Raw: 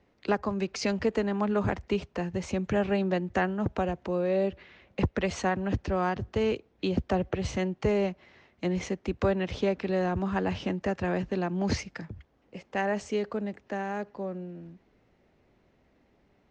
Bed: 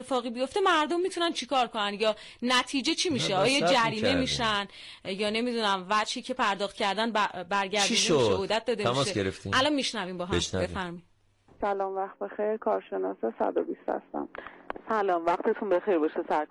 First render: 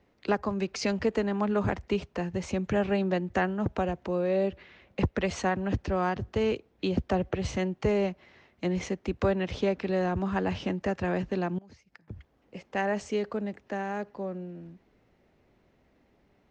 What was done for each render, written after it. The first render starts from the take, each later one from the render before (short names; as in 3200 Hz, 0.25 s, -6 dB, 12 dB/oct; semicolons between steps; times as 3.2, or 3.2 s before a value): 11.58–12.08 flipped gate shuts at -30 dBFS, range -26 dB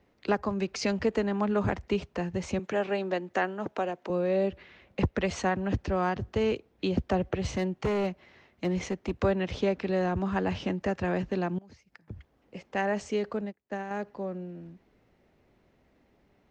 2.59–4.1 HPF 310 Hz; 7.43–9.13 hard clip -23 dBFS; 13.41–13.91 upward expander 2.5:1, over -48 dBFS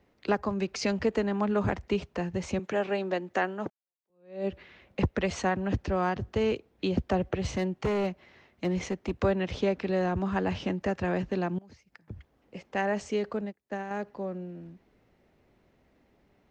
3.7–4.47 fade in exponential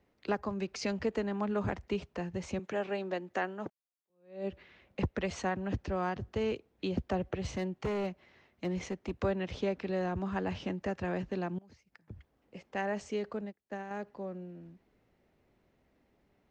gain -5.5 dB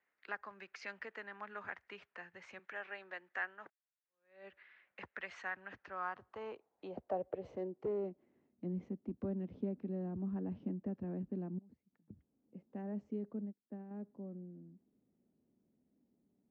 band-pass sweep 1700 Hz -> 230 Hz, 5.67–8.59